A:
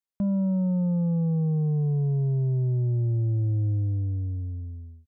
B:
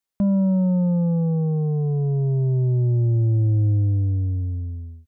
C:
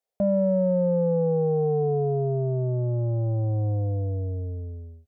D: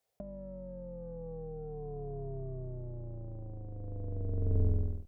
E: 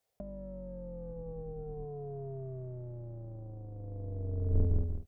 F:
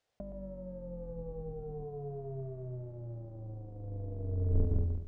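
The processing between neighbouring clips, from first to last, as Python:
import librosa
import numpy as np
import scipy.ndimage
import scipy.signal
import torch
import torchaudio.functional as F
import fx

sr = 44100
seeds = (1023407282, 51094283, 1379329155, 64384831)

y1 = fx.peak_eq(x, sr, hz=150.0, db=-5.0, octaves=0.45)
y1 = y1 * librosa.db_to_amplitude(7.0)
y2 = fx.cheby_harmonics(y1, sr, harmonics=(5,), levels_db=(-32,), full_scale_db=-15.0)
y2 = fx.band_shelf(y2, sr, hz=570.0, db=15.5, octaves=1.1)
y2 = y2 * librosa.db_to_amplitude(-6.5)
y3 = fx.octave_divider(y2, sr, octaves=2, level_db=-1.0)
y3 = fx.over_compress(y3, sr, threshold_db=-30.0, ratio=-0.5)
y3 = y3 * librosa.db_to_amplitude(-4.0)
y4 = fx.octave_divider(y3, sr, octaves=2, level_db=-6.0)
y5 = y4 + 10.0 ** (-10.0 / 20.0) * np.pad(y4, (int(119 * sr / 1000.0), 0))[:len(y4)]
y5 = np.interp(np.arange(len(y5)), np.arange(len(y5))[::3], y5[::3])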